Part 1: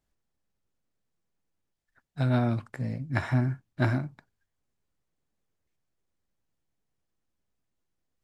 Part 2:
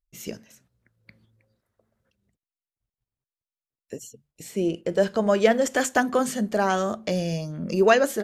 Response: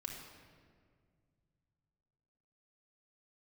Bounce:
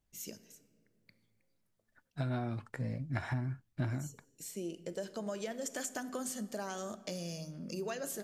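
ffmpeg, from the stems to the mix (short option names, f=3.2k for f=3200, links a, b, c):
-filter_complex "[0:a]flanger=delay=0.3:depth=3.2:regen=65:speed=0.26:shape=triangular,volume=2dB[a];[1:a]highpass=110,bass=f=250:g=3,treble=f=4k:g=12,acompressor=threshold=-21dB:ratio=6,volume=-16dB,asplit=2[b][c];[c]volume=-8dB[d];[2:a]atrim=start_sample=2205[e];[d][e]afir=irnorm=-1:irlink=0[f];[a][b][f]amix=inputs=3:normalize=0,acompressor=threshold=-32dB:ratio=6"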